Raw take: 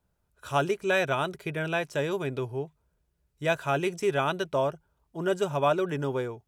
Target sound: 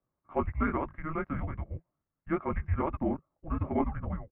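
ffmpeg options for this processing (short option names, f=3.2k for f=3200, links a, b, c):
-af "flanger=delay=19.5:depth=7.6:speed=1.6,highpass=f=200:t=q:w=0.5412,highpass=f=200:t=q:w=1.307,lowpass=f=2.2k:t=q:w=0.5176,lowpass=f=2.2k:t=q:w=0.7071,lowpass=f=2.2k:t=q:w=1.932,afreqshift=-320,atempo=1.5"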